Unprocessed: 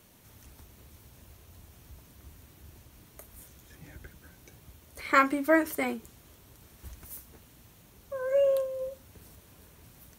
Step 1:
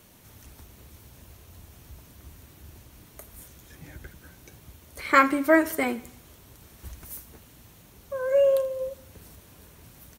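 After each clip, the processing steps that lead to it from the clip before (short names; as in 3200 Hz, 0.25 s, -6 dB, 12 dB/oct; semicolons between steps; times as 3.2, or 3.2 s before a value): feedback echo 81 ms, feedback 49%, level -19.5 dB; gain +4 dB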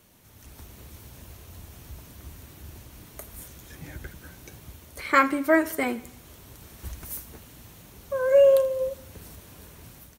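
AGC gain up to 8 dB; gain -4 dB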